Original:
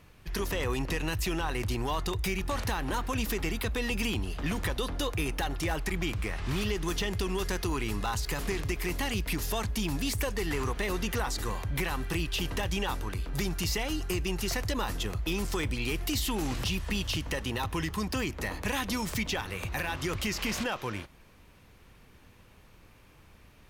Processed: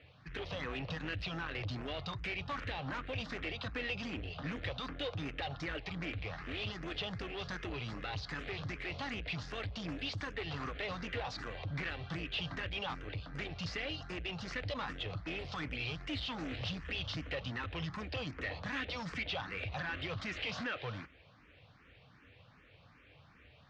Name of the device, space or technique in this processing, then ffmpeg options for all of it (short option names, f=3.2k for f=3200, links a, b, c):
barber-pole phaser into a guitar amplifier: -filter_complex "[0:a]asplit=2[a][b];[b]afreqshift=2.6[c];[a][c]amix=inputs=2:normalize=1,asoftclip=type=tanh:threshold=-33.5dB,highpass=92,equalizer=f=210:t=q:w=4:g=-9,equalizer=f=370:t=q:w=4:g=-9,equalizer=f=940:t=q:w=4:g=-7,lowpass=f=4.1k:w=0.5412,lowpass=f=4.1k:w=1.3066,volume=2.5dB"